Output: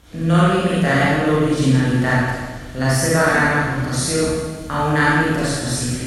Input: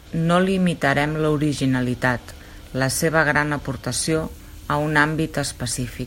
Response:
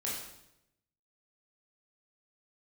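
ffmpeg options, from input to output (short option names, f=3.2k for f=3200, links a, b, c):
-filter_complex "[0:a]flanger=delay=4.6:depth=10:regen=82:speed=1.3:shape=triangular[a];[1:a]atrim=start_sample=2205,asetrate=24696,aresample=44100[b];[a][b]afir=irnorm=-1:irlink=0"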